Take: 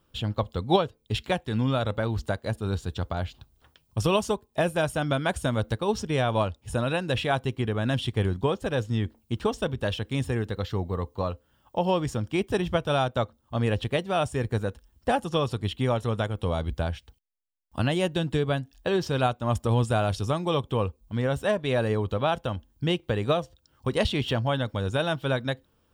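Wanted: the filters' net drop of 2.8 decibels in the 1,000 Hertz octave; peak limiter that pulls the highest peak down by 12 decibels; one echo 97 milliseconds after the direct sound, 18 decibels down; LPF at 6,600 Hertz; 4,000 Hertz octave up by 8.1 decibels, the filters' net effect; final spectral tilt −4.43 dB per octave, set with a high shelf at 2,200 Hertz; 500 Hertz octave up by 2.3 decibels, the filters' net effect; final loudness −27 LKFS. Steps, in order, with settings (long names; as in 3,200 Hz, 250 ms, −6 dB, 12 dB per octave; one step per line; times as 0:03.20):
low-pass filter 6,600 Hz
parametric band 500 Hz +4.5 dB
parametric band 1,000 Hz −7.5 dB
high-shelf EQ 2,200 Hz +5 dB
parametric band 4,000 Hz +6.5 dB
brickwall limiter −17.5 dBFS
single-tap delay 97 ms −18 dB
level +1.5 dB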